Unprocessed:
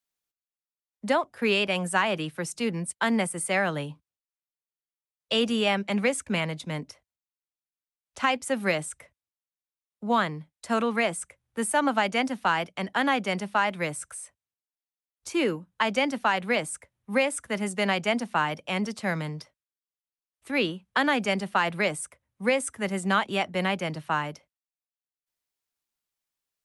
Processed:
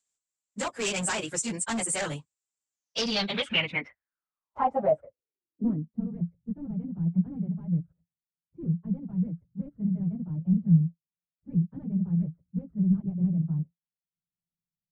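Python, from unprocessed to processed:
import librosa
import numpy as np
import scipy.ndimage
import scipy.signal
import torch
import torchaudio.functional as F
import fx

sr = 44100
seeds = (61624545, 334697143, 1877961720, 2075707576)

y = fx.stretch_vocoder_free(x, sr, factor=0.56)
y = np.clip(10.0 ** (29.0 / 20.0) * y, -1.0, 1.0) / 10.0 ** (29.0 / 20.0)
y = fx.filter_sweep_lowpass(y, sr, from_hz=7500.0, to_hz=170.0, start_s=2.7, end_s=6.12, q=7.9)
y = y * 10.0 ** (1.5 / 20.0)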